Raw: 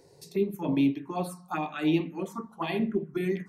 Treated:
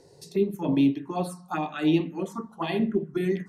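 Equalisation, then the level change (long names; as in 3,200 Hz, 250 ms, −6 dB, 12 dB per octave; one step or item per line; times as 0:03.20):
low-pass filter 11,000 Hz 12 dB per octave
parametric band 1,100 Hz −2 dB
parametric band 2,300 Hz −7 dB 0.2 octaves
+3.0 dB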